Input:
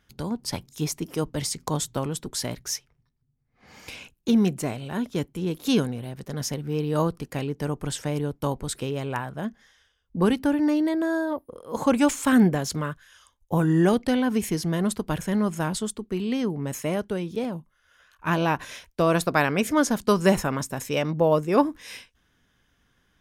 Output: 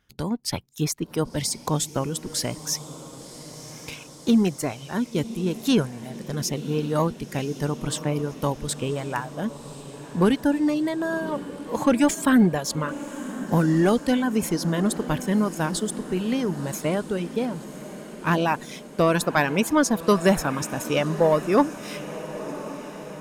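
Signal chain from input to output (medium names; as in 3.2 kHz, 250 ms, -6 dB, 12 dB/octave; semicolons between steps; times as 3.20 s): waveshaping leveller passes 1; reverb removal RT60 1 s; echo that smears into a reverb 1069 ms, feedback 62%, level -14 dB; trim -1 dB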